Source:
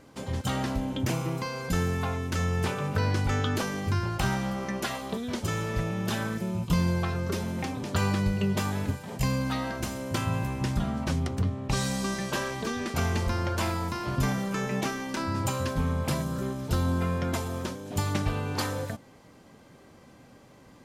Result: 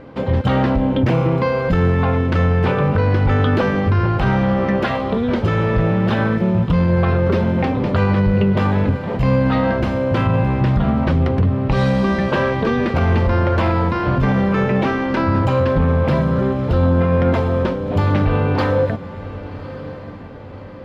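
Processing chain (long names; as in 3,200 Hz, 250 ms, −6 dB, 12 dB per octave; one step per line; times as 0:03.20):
parametric band 510 Hz +6.5 dB 0.21 octaves
in parallel at −4 dB: gain into a clipping stage and back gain 27 dB
on the sum: high-frequency loss of the air 380 metres
feedback delay with all-pass diffusion 1,147 ms, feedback 45%, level −16 dB
boost into a limiter +18 dB
level −7.5 dB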